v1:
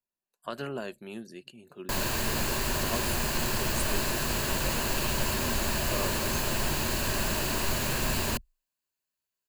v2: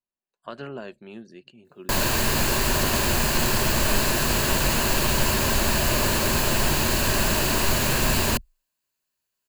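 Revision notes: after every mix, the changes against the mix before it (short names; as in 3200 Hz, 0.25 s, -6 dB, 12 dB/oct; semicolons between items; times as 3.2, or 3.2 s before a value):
speech: add air absorption 110 m; background +7.0 dB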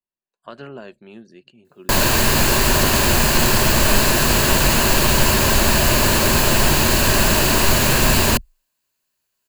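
background +6.5 dB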